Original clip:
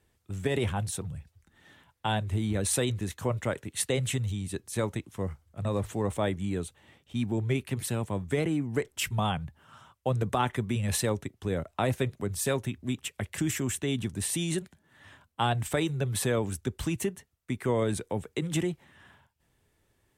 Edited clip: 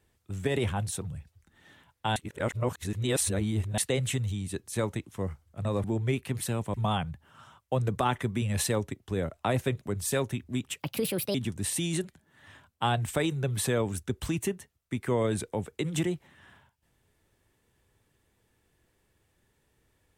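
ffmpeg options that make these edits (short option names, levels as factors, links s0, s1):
-filter_complex "[0:a]asplit=7[s0][s1][s2][s3][s4][s5][s6];[s0]atrim=end=2.162[s7];[s1]atrim=start=2.158:end=3.782,asetpts=PTS-STARTPTS,areverse[s8];[s2]atrim=start=3.778:end=5.842[s9];[s3]atrim=start=7.258:end=8.162[s10];[s4]atrim=start=9.078:end=13.144[s11];[s5]atrim=start=13.14:end=13.92,asetpts=PTS-STARTPTS,asetrate=63063,aresample=44100[s12];[s6]atrim=start=13.916[s13];[s7][s8]acrossfade=d=0.004:c1=hsin:c2=hsin[s14];[s14][s9]acrossfade=d=0.004:c1=hsin:c2=hsin[s15];[s15][s10]acrossfade=d=0.004:c1=hsin:c2=hsin[s16];[s16][s11]acrossfade=d=0.004:c1=hsin:c2=hsin[s17];[s17][s12]acrossfade=d=0.004:c1=hsin:c2=hsin[s18];[s18][s13]acrossfade=d=0.004:c1=hsin:c2=hsin"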